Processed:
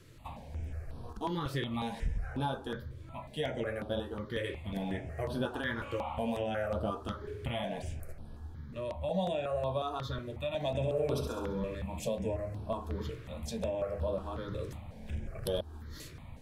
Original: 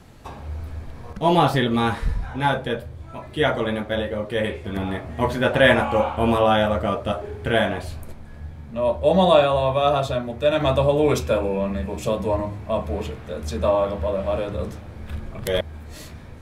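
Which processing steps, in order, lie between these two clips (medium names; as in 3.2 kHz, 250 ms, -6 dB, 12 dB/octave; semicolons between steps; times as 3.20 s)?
compression 5:1, threshold -22 dBFS, peak gain reduction 11 dB; 10.68–11.75 s: flutter echo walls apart 11.6 m, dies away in 0.75 s; stepped phaser 5.5 Hz 210–7000 Hz; trim -6 dB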